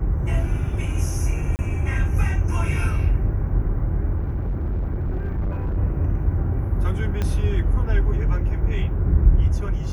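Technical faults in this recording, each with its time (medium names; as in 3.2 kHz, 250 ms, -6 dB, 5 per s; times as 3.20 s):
1.56–1.59 s: dropout 29 ms
4.17–5.77 s: clipped -20.5 dBFS
7.22 s: pop -12 dBFS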